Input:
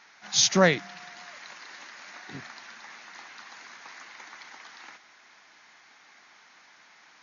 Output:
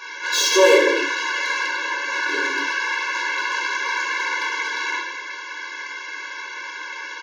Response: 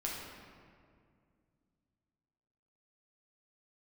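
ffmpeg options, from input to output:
-filter_complex "[0:a]asettb=1/sr,asplit=3[a][b][c];[a]atrim=end=1.664[d];[b]atrim=start=1.66:end=2.1,asetpts=PTS-STARTPTS,afade=t=in:d=0.004:c=qsin,afade=t=out:st=0.436:d=0.004:c=qsin,highshelf=f=2.3k:g=-6[e];[c]atrim=start=2.096[f];[d][e]acrossfade=d=0.004:c1=hsin:c2=qsin[g];[g][f]acrossfade=d=0.004:c1=qsin:c2=hsin,asplit=2[h][i];[i]highpass=f=720:p=1,volume=32dB,asoftclip=type=tanh:threshold=-6dB[j];[h][j]amix=inputs=2:normalize=0,lowpass=f=3.1k:p=1,volume=-6dB,aecho=1:1:208:0.0944[k];[1:a]atrim=start_sample=2205,afade=t=out:st=0.44:d=0.01,atrim=end_sample=19845,asetrate=57330,aresample=44100[l];[k][l]afir=irnorm=-1:irlink=0,afftfilt=real='re*eq(mod(floor(b*sr/1024/290),2),1)':imag='im*eq(mod(floor(b*sr/1024/290),2),1)':win_size=1024:overlap=0.75,volume=3dB"

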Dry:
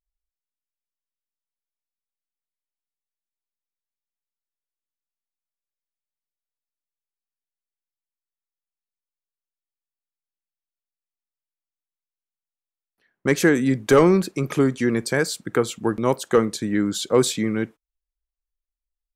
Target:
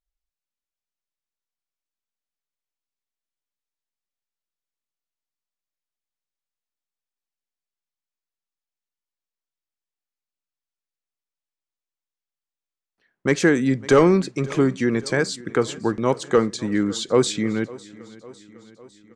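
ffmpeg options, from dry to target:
-af "lowpass=f=7.9k:w=0.5412,lowpass=f=7.9k:w=1.3066,aecho=1:1:553|1106|1659|2212|2765:0.0891|0.0535|0.0321|0.0193|0.0116"

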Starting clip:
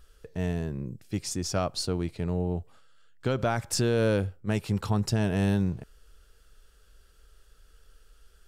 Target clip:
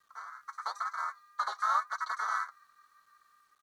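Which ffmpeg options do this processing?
-filter_complex "[0:a]afftfilt=real='real(if(between(b,1,1008),(2*floor((b-1)/48)+1)*48-b,b),0)':imag='imag(if(between(b,1,1008),(2*floor((b-1)/48)+1)*48-b,b),0)*if(between(b,1,1008),-1,1)':win_size=2048:overlap=0.75,agate=range=-33dB:threshold=-54dB:ratio=3:detection=peak,lowpass=f=3.5k:w=0.5412,lowpass=f=3.5k:w=1.3066,lowshelf=f=270:t=q:w=3:g=-11.5,bandreject=f=215.9:t=h:w=4,bandreject=f=431.8:t=h:w=4,bandreject=f=647.7:t=h:w=4,bandreject=f=863.6:t=h:w=4,dynaudnorm=f=250:g=11:m=10dB,asplit=4[a][b][c][d];[b]asetrate=22050,aresample=44100,atempo=2,volume=-7dB[e];[c]asetrate=29433,aresample=44100,atempo=1.49831,volume=-6dB[f];[d]asetrate=35002,aresample=44100,atempo=1.25992,volume=-1dB[g];[a][e][f][g]amix=inputs=4:normalize=0,aresample=11025,acrusher=bits=4:mode=log:mix=0:aa=0.000001,aresample=44100,flanger=delay=7.2:depth=9.9:regen=62:speed=0.42:shape=sinusoidal,asplit=3[h][i][j];[h]bandpass=f=530:t=q:w=8,volume=0dB[k];[i]bandpass=f=1.84k:t=q:w=8,volume=-6dB[l];[j]bandpass=f=2.48k:t=q:w=8,volume=-9dB[m];[k][l][m]amix=inputs=3:normalize=0,acrusher=bits=10:mix=0:aa=0.000001,asetrate=103194,aresample=44100,volume=-6.5dB"

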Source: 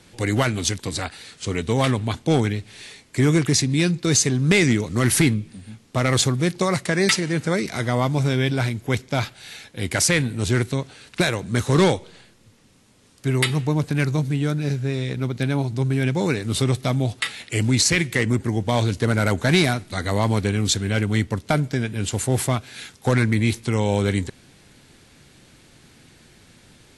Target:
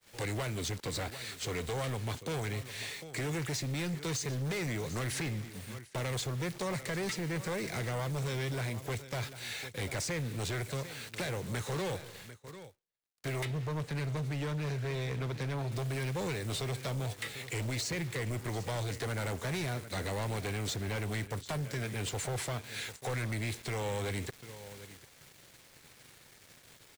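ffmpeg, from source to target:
-filter_complex "[0:a]equalizer=f=125:t=o:w=1:g=5,equalizer=f=250:t=o:w=1:g=-4,equalizer=f=500:t=o:w=1:g=8,equalizer=f=1k:t=o:w=1:g=4,equalizer=f=2k:t=o:w=1:g=8,equalizer=f=4k:t=o:w=1:g=4,equalizer=f=8k:t=o:w=1:g=7,acrossover=split=190|540|7100[a][b][c][d];[a]acompressor=threshold=-29dB:ratio=4[e];[b]acompressor=threshold=-29dB:ratio=4[f];[c]acompressor=threshold=-30dB:ratio=4[g];[d]acompressor=threshold=-43dB:ratio=4[h];[e][f][g][h]amix=inputs=4:normalize=0,acrusher=bits=6:mix=0:aa=0.000001,asettb=1/sr,asplit=3[i][j][k];[i]atrim=end=13.454[l];[j]atrim=start=13.45:end=15.72,asetpts=PTS-STARTPTS,afade=t=in:d=0.004:c=qsin,afade=t=out:st=2.266:d=0.004:c=qsin,highshelf=f=6k:g=-11.5[m];[k]atrim=start=15.716[n];[l][m]acrossfade=d=0.004:c1=hsin:c2=qsin[o];[o][n]acrossfade=d=0.004:c1=qsin:c2=hsin,aecho=1:1:746:0.141,asoftclip=type=hard:threshold=-25dB,agate=range=-33dB:threshold=-37dB:ratio=3:detection=peak,volume=-7dB"

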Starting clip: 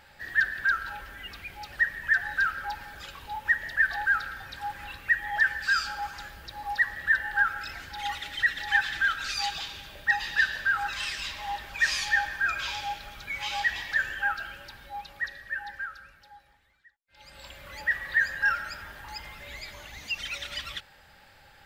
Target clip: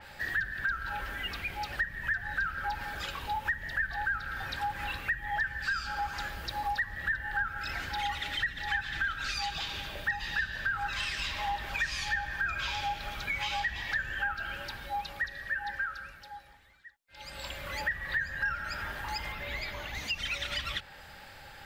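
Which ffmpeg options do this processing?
-filter_complex "[0:a]asettb=1/sr,asplit=3[a][b][c];[a]atrim=end=19.324[d];[b]atrim=start=19.32:end=19.95,asetpts=PTS-STARTPTS,afade=t=in:d=0.004:c=qsin,afade=t=out:st=0.626:d=0.004:c=qsin,equalizer=f=8.3k:w=0.94:g=-9[e];[c]atrim=start=19.946[f];[d][e]acrossfade=d=0.004:c1=hsin:c2=qsin[g];[g][f]acrossfade=d=0.004:c1=qsin:c2=hsin,acrossover=split=200[h][i];[i]acompressor=threshold=-36dB:ratio=6[j];[h][j]amix=inputs=2:normalize=0,adynamicequalizer=threshold=0.00282:dfrequency=4200:dqfactor=0.7:tfrequency=4200:tqfactor=0.7:attack=5:release=100:ratio=0.375:range=2.5:mode=cutabove:tftype=highshelf,volume=6dB"

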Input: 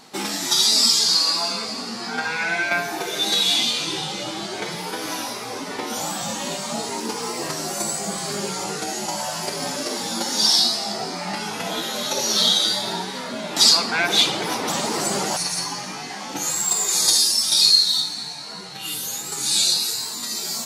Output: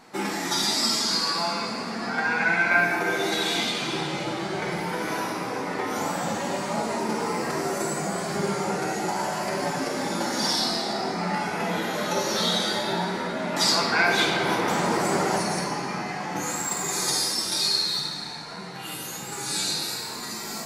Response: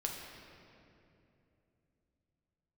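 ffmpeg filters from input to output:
-filter_complex "[0:a]highshelf=f=2.6k:t=q:w=1.5:g=-6.5[a];[1:a]atrim=start_sample=2205[b];[a][b]afir=irnorm=-1:irlink=0,volume=-1dB"

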